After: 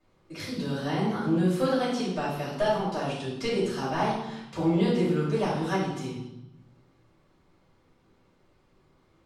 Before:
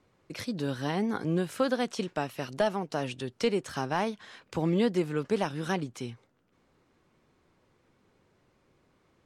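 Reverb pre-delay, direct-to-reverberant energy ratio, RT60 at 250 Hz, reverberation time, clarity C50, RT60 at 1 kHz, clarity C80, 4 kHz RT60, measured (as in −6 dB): 3 ms, −10.5 dB, 1.3 s, 0.90 s, 1.0 dB, 0.90 s, 4.5 dB, 0.85 s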